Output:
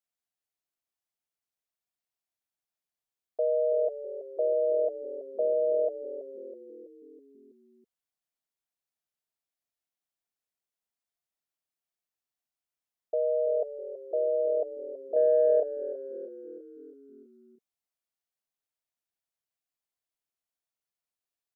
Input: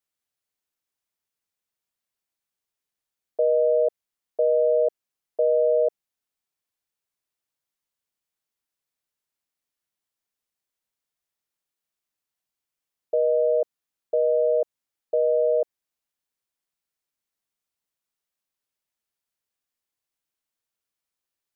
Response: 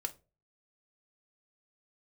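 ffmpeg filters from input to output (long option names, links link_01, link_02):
-filter_complex "[0:a]asettb=1/sr,asplit=3[link_01][link_02][link_03];[link_01]atrim=end=15.164[link_04];[link_02]atrim=start=15.16:end=15.6,asetpts=PTS-STARTPTS,afade=type=in:duration=0.004:curve=qsin,afade=type=out:start_time=0.436:duration=0.004:curve=qsin,acontrast=28[link_05];[link_03]atrim=start=15.596[link_06];[link_04][link_05]acrossfade=duration=0.004:curve1=hsin:curve2=qsin[link_07];[link_07][link_06]acrossfade=duration=0.004:curve1=qsin:curve2=hsin,equalizer=frequency=700:width_type=o:width=0.24:gain=7,asplit=7[link_08][link_09][link_10][link_11][link_12][link_13][link_14];[link_09]adelay=326,afreqshift=-41,volume=-13dB[link_15];[link_10]adelay=652,afreqshift=-82,volume=-17.6dB[link_16];[link_11]adelay=978,afreqshift=-123,volume=-22.2dB[link_17];[link_12]adelay=1304,afreqshift=-164,volume=-26.7dB[link_18];[link_13]adelay=1630,afreqshift=-205,volume=-31.3dB[link_19];[link_14]adelay=1956,afreqshift=-246,volume=-35.9dB[link_20];[link_08][link_15][link_16][link_17][link_18][link_19][link_20]amix=inputs=7:normalize=0,volume=-7.5dB"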